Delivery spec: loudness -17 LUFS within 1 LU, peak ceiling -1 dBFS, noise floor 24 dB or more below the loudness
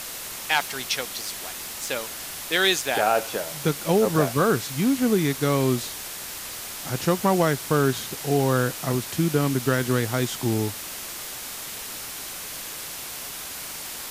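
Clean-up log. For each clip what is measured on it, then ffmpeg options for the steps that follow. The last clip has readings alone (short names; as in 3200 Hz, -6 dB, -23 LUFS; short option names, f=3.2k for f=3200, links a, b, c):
noise floor -36 dBFS; noise floor target -49 dBFS; loudness -25.0 LUFS; peak -8.5 dBFS; loudness target -17.0 LUFS
-> -af "afftdn=nr=13:nf=-36"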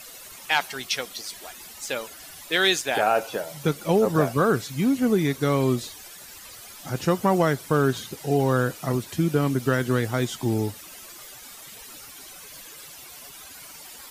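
noise floor -44 dBFS; noise floor target -48 dBFS
-> -af "afftdn=nr=6:nf=-44"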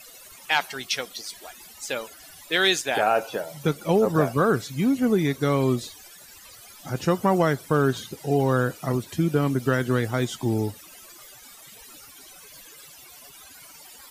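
noise floor -47 dBFS; noise floor target -48 dBFS
-> -af "afftdn=nr=6:nf=-47"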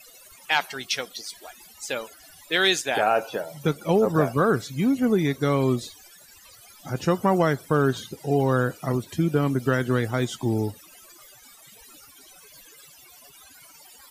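noise floor -51 dBFS; loudness -24.0 LUFS; peak -8.5 dBFS; loudness target -17.0 LUFS
-> -af "volume=7dB"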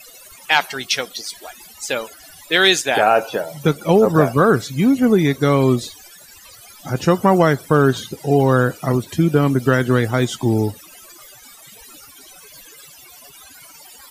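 loudness -17.0 LUFS; peak -1.5 dBFS; noise floor -44 dBFS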